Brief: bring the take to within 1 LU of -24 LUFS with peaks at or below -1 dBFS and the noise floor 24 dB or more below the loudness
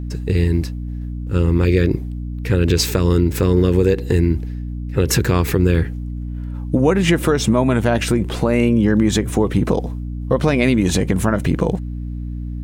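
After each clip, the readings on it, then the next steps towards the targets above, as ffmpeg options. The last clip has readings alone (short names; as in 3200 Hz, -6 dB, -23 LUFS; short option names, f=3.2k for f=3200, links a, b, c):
hum 60 Hz; harmonics up to 300 Hz; hum level -23 dBFS; loudness -18.0 LUFS; peak -2.5 dBFS; loudness target -24.0 LUFS
-> -af "bandreject=f=60:t=h:w=4,bandreject=f=120:t=h:w=4,bandreject=f=180:t=h:w=4,bandreject=f=240:t=h:w=4,bandreject=f=300:t=h:w=4"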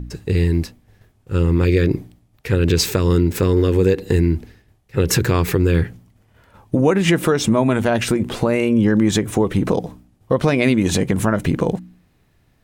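hum none; loudness -18.5 LUFS; peak -3.5 dBFS; loudness target -24.0 LUFS
-> -af "volume=-5.5dB"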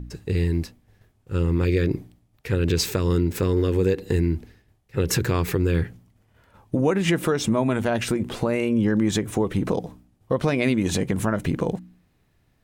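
loudness -24.0 LUFS; peak -9.0 dBFS; noise floor -65 dBFS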